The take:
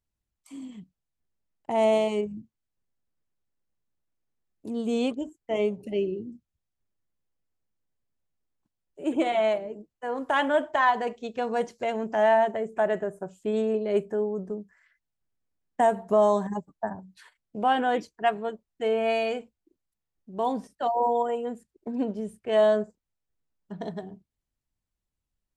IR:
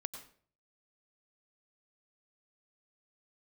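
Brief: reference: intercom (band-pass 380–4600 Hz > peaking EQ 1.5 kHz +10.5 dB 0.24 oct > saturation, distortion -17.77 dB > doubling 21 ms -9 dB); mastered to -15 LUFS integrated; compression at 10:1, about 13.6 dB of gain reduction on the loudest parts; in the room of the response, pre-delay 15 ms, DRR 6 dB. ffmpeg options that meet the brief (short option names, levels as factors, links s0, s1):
-filter_complex "[0:a]acompressor=threshold=0.0282:ratio=10,asplit=2[s0][s1];[1:a]atrim=start_sample=2205,adelay=15[s2];[s1][s2]afir=irnorm=-1:irlink=0,volume=0.596[s3];[s0][s3]amix=inputs=2:normalize=0,highpass=380,lowpass=4600,equalizer=f=1500:t=o:w=0.24:g=10.5,asoftclip=threshold=0.0473,asplit=2[s4][s5];[s5]adelay=21,volume=0.355[s6];[s4][s6]amix=inputs=2:normalize=0,volume=13.3"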